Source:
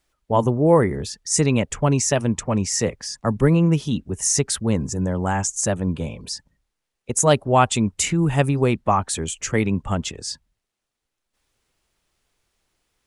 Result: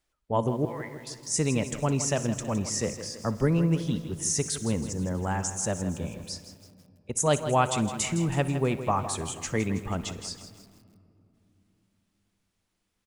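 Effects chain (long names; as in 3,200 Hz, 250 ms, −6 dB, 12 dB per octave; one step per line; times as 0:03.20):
0:00.65–0:01.07: resonant band-pass 2,300 Hz, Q 2.3
repeating echo 61 ms, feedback 40%, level −19.5 dB
on a send at −16.5 dB: convolution reverb RT60 3.0 s, pre-delay 4 ms
on the sum: feedback echo at a low word length 162 ms, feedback 55%, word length 7 bits, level −11 dB
level −7.5 dB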